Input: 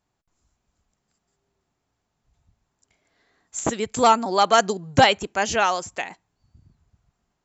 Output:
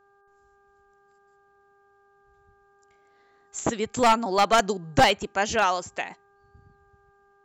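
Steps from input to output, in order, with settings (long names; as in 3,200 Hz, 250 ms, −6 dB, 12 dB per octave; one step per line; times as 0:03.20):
wavefolder on the positive side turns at −11 dBFS
hum with harmonics 400 Hz, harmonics 4, −60 dBFS −2 dB per octave
high-shelf EQ 6,500 Hz −5 dB
level −1.5 dB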